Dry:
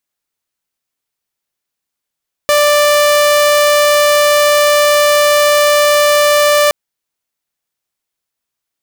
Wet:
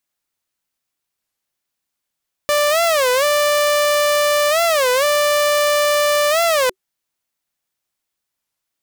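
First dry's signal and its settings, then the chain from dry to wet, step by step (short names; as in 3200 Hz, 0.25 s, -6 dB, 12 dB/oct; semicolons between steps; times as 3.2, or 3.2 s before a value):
tone saw 589 Hz -5 dBFS 4.22 s
notch 440 Hz, Q 12; limiter -10 dBFS; record warp 33 1/3 rpm, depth 250 cents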